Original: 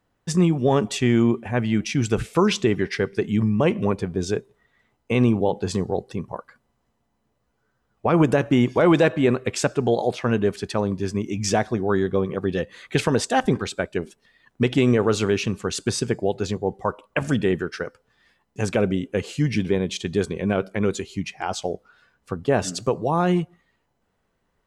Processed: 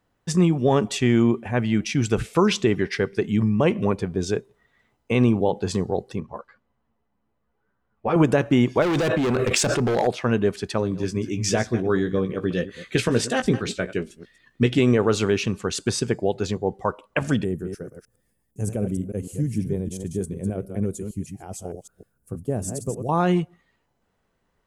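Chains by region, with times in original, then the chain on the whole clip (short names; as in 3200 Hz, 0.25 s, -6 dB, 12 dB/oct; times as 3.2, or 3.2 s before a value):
6.2–8.16 low-pass opened by the level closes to 2500 Hz, open at -25 dBFS + ensemble effect
8.82–10.07 hard clip -20.5 dBFS + fast leveller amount 100%
10.78–14.8 reverse delay 0.128 s, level -14 dB + bell 850 Hz -8.5 dB 0.75 oct + doubler 17 ms -8 dB
17.44–23.09 reverse delay 0.153 s, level -7 dB + EQ curve 120 Hz 0 dB, 660 Hz -10 dB, 940 Hz -18 dB, 4000 Hz -22 dB, 10000 Hz +8 dB
whole clip: dry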